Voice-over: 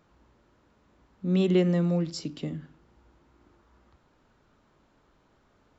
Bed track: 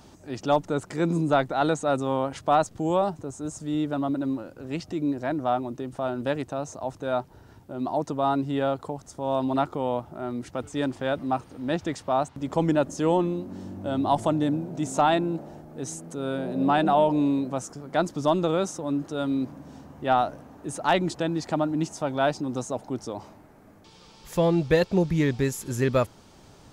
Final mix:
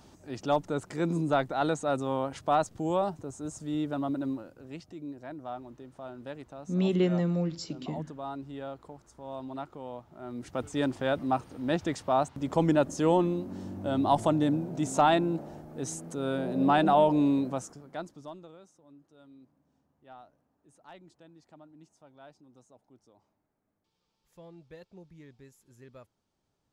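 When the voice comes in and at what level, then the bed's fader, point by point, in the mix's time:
5.45 s, -3.0 dB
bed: 4.27 s -4.5 dB
4.94 s -14 dB
10.07 s -14 dB
10.58 s -1.5 dB
17.47 s -1.5 dB
18.60 s -28.5 dB

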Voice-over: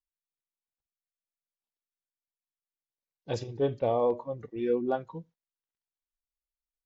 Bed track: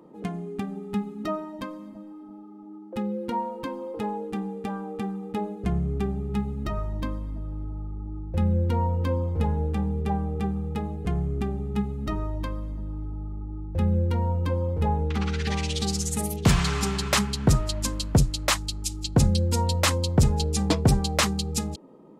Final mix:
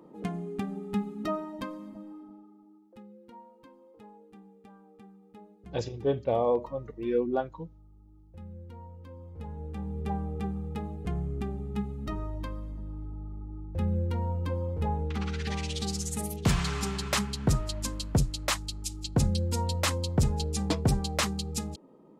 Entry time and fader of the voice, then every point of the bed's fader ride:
2.45 s, +0.5 dB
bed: 2.15 s -2 dB
3.07 s -21.5 dB
9.09 s -21.5 dB
10.08 s -5.5 dB

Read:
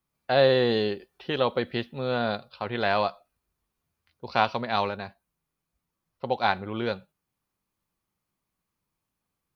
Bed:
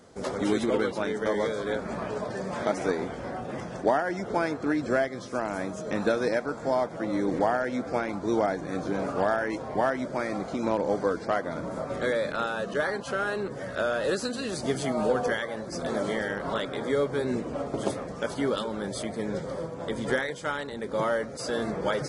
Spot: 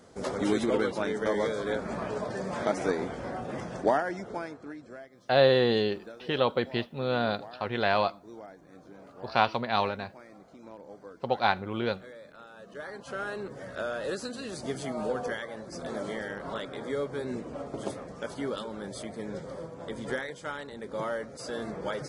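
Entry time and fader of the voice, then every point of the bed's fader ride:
5.00 s, -1.0 dB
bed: 3.97 s -1 dB
4.96 s -20.5 dB
12.45 s -20.5 dB
13.19 s -6 dB

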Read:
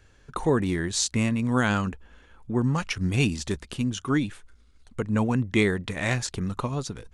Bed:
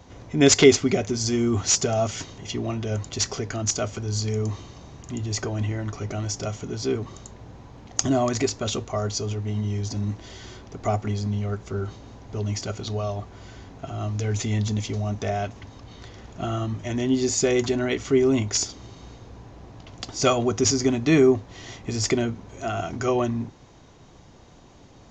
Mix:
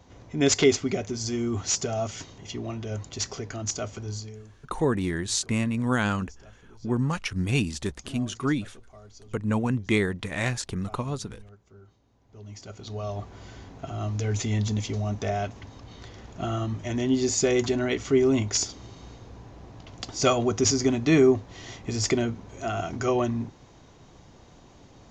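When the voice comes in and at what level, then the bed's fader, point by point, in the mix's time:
4.35 s, -1.5 dB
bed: 4.10 s -5.5 dB
4.48 s -23 dB
12.09 s -23 dB
13.22 s -1.5 dB

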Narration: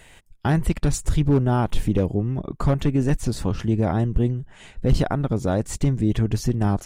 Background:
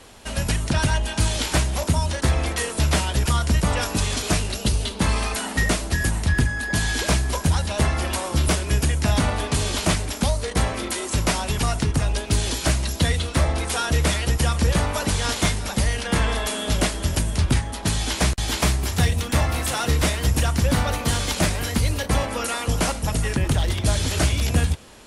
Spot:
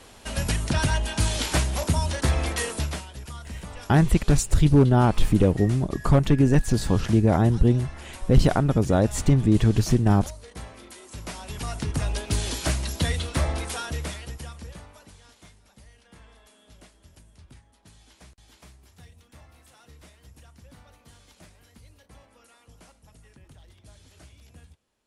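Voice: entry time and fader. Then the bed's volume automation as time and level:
3.45 s, +2.0 dB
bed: 2.71 s -2.5 dB
3.09 s -18 dB
11.07 s -18 dB
12.03 s -4.5 dB
13.55 s -4.5 dB
15.31 s -30.5 dB

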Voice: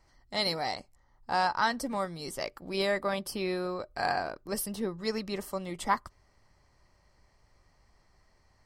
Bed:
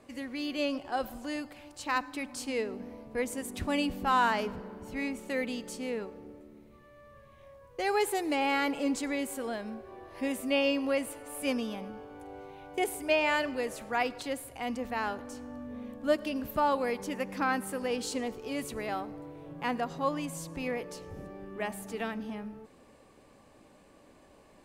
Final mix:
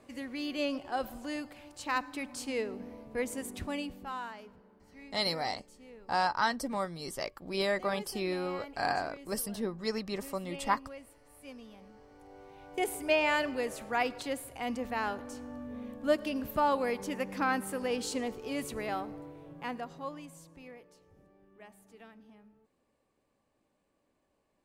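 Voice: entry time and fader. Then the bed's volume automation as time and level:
4.80 s, -1.5 dB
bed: 3.47 s -1.5 dB
4.37 s -17.5 dB
11.53 s -17.5 dB
12.91 s -0.5 dB
19.13 s -0.5 dB
20.95 s -18.5 dB

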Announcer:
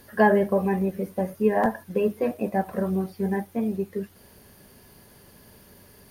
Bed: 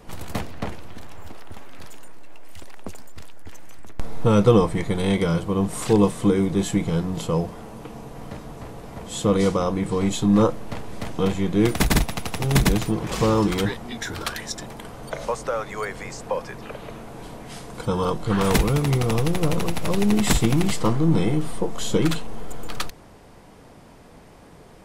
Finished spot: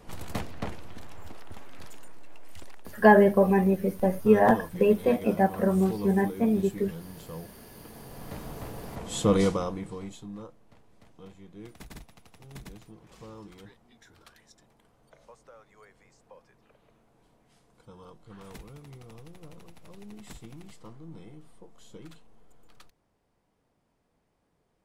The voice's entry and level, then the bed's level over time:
2.85 s, +2.0 dB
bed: 2.69 s -5 dB
3.08 s -18 dB
7.54 s -18 dB
8.44 s -2.5 dB
9.39 s -2.5 dB
10.44 s -26.5 dB

